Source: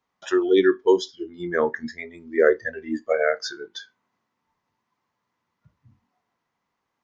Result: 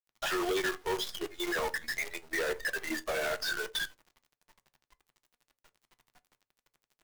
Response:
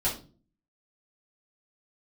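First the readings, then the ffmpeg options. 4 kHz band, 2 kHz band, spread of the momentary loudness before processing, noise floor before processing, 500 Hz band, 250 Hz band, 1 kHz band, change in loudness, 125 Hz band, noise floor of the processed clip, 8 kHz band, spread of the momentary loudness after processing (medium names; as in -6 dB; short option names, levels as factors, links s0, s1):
0.0 dB, -3.5 dB, 17 LU, -79 dBFS, -14.5 dB, -14.0 dB, -5.5 dB, -10.5 dB, -8.0 dB, under -85 dBFS, no reading, 5 LU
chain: -filter_complex "[0:a]acrossover=split=3900[s0][s1];[s1]acompressor=threshold=0.00282:ratio=4:attack=1:release=60[s2];[s0][s2]amix=inputs=2:normalize=0,highpass=f=570:w=0.5412,highpass=f=570:w=1.3066,asplit=2[s3][s4];[s4]alimiter=limit=0.112:level=0:latency=1,volume=1.26[s5];[s3][s5]amix=inputs=2:normalize=0,acompressor=threshold=0.0447:ratio=6,tremolo=f=12:d=0.64,acrusher=bits=8:dc=4:mix=0:aa=0.000001,asoftclip=type=hard:threshold=0.0141,asplit=2[s6][s7];[1:a]atrim=start_sample=2205,asetrate=83790,aresample=44100[s8];[s7][s8]afir=irnorm=-1:irlink=0,volume=0.168[s9];[s6][s9]amix=inputs=2:normalize=0,volume=2.24"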